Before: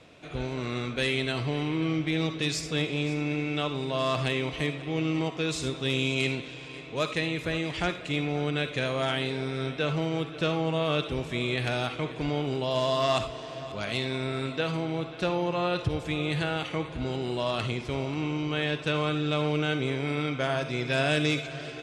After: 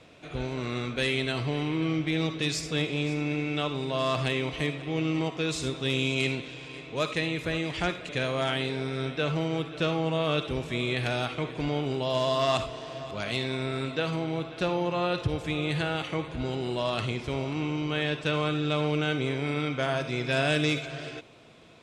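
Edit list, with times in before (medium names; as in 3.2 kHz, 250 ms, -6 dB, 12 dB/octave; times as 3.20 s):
8.09–8.70 s: delete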